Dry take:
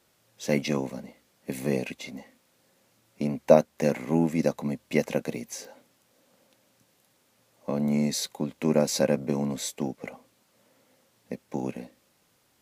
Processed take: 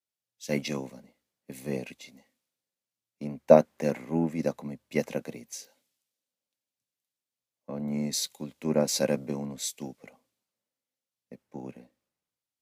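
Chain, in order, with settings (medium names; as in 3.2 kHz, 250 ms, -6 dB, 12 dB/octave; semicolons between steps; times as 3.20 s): three bands expanded up and down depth 70%; trim -5.5 dB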